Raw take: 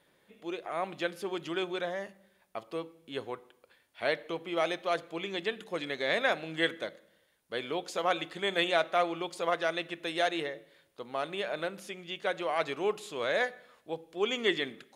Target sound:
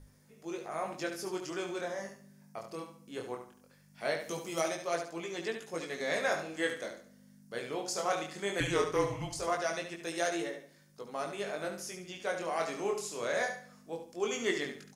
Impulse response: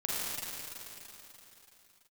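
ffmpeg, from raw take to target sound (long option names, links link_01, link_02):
-filter_complex "[0:a]asplit=3[link_01][link_02][link_03];[link_01]afade=type=out:start_time=4.19:duration=0.02[link_04];[link_02]bass=frequency=250:gain=6,treble=frequency=4000:gain=14,afade=type=in:start_time=4.19:duration=0.02,afade=type=out:start_time=4.6:duration=0.02[link_05];[link_03]afade=type=in:start_time=4.6:duration=0.02[link_06];[link_04][link_05][link_06]amix=inputs=3:normalize=0,aeval=exprs='val(0)+0.00447*(sin(2*PI*50*n/s)+sin(2*PI*2*50*n/s)/2+sin(2*PI*3*50*n/s)/3+sin(2*PI*4*50*n/s)/4+sin(2*PI*5*50*n/s)/5)':channel_layout=same,flanger=delay=17.5:depth=8:speed=0.19,asettb=1/sr,asplit=3[link_07][link_08][link_09];[link_07]atrim=end=8.604[link_10];[link_08]atrim=start=8.6:end=9.39,asetpts=PTS-STARTPTS,afade=type=in:duration=0.004:curve=qsin,afade=type=out:start_time=0.786:duration=0.004:curve=qsin,afreqshift=-210[link_11];[link_09]atrim=start=9.386[link_12];[link_10][link_11]acrossfade=duration=0.004:curve1=hsin:curve2=qsin[link_13];[link_13][link_12]acrossfade=duration=0.004:curve1=qsin:curve2=hsin,highshelf=frequency=4400:width_type=q:width=3:gain=7.5,bandreject=frequency=50:width_type=h:width=6,bandreject=frequency=100:width_type=h:width=6,asplit=2[link_14][link_15];[link_15]aecho=0:1:71|142|213|284:0.398|0.123|0.0383|0.0119[link_16];[link_14][link_16]amix=inputs=2:normalize=0"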